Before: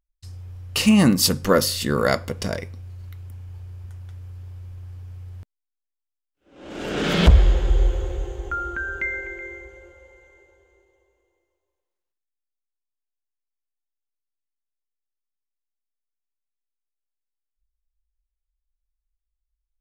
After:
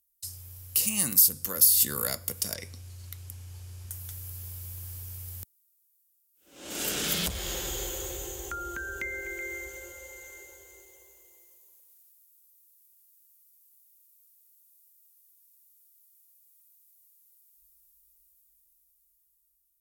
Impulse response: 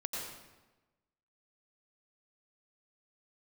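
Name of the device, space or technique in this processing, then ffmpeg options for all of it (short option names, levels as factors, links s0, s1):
FM broadcast chain: -filter_complex "[0:a]highpass=f=51:p=1,dynaudnorm=f=610:g=7:m=4.22,acrossover=split=110|720[s0][s1][s2];[s0]acompressor=threshold=0.02:ratio=4[s3];[s1]acompressor=threshold=0.0355:ratio=4[s4];[s2]acompressor=threshold=0.0251:ratio=4[s5];[s3][s4][s5]amix=inputs=3:normalize=0,aemphasis=mode=production:type=75fm,alimiter=limit=0.224:level=0:latency=1:release=298,asoftclip=type=hard:threshold=0.15,lowpass=f=15000:w=0.5412,lowpass=f=15000:w=1.3066,aemphasis=mode=production:type=75fm,asettb=1/sr,asplit=3[s6][s7][s8];[s6]atrim=end=2.544[s9];[s7]atrim=start=2.54:end=3.91,asetpts=PTS-STARTPTS,afade=t=in:d=0.004:c=qsin,afade=t=out:st=1.366:d=0.004:c=qsin,lowpass=7000[s10];[s8]atrim=start=3.906[s11];[s9][s10]acrossfade=d=0.004:c1=hsin:c2=qsin[s12];[s12][s11]acrossfade=d=0.004:c1=qsin:c2=hsin,volume=0.422"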